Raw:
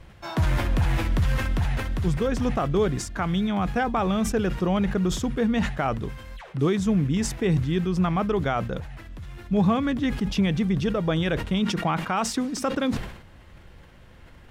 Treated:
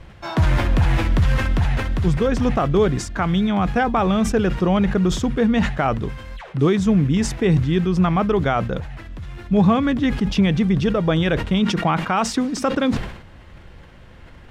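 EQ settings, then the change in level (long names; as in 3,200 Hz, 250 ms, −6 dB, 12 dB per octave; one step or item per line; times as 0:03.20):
high-shelf EQ 10,000 Hz −12 dB
+5.5 dB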